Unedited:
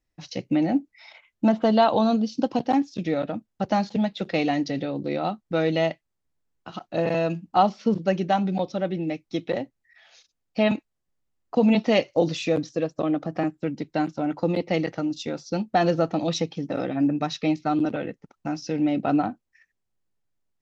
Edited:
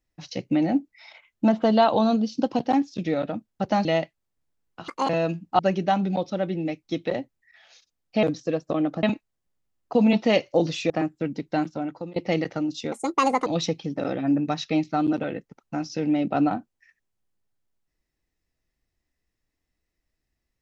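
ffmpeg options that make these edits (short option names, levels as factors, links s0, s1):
-filter_complex "[0:a]asplit=11[s0][s1][s2][s3][s4][s5][s6][s7][s8][s9][s10];[s0]atrim=end=3.852[s11];[s1]atrim=start=5.728:end=6.764[s12];[s2]atrim=start=6.76:end=7.1,asetpts=PTS-STARTPTS,asetrate=71442,aresample=44100[s13];[s3]atrim=start=7.096:end=7.602[s14];[s4]atrim=start=8.008:end=10.652[s15];[s5]atrim=start=12.518:end=13.322[s16];[s6]atrim=start=10.648:end=12.522[s17];[s7]atrim=start=13.318:end=14.58,asetpts=PTS-STARTPTS,afade=t=out:st=0.752:d=0.51:silence=0.0707946[s18];[s8]atrim=start=14.58:end=15.344,asetpts=PTS-STARTPTS,afade=t=in:d=0.004:c=hsin:silence=0.0707946[s19];[s9]atrim=start=15.34:end=16.19,asetpts=PTS-STARTPTS,asetrate=68796,aresample=44100[s20];[s10]atrim=start=16.186[s21];[s11][s12]acrossfade=d=0.004:c1=hsin:c2=hsin[s22];[s22][s13]acrossfade=d=0.004:c1=hsin:c2=hsin[s23];[s23][s14]acrossfade=d=0.004:c1=hsin:c2=hsin[s24];[s24][s15]acrossfade=d=0.004:c1=hsin:c2=hsin[s25];[s25][s16]acrossfade=d=0.004:c1=hsin:c2=hsin[s26];[s26][s17]acrossfade=d=0.004:c1=hsin:c2=hsin[s27];[s18][s19]concat=n=2:v=0:a=1[s28];[s27][s28]acrossfade=d=0.004:c1=hsin:c2=hsin[s29];[s29][s20]acrossfade=d=0.004:c1=hsin:c2=hsin[s30];[s30][s21]acrossfade=d=0.004:c1=hsin:c2=hsin"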